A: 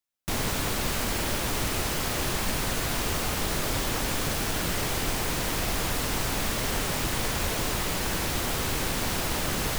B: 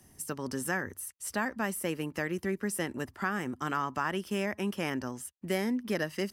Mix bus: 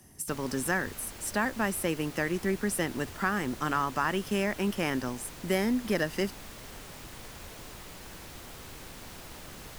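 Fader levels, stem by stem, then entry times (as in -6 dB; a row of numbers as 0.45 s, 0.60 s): -17.0 dB, +3.0 dB; 0.00 s, 0.00 s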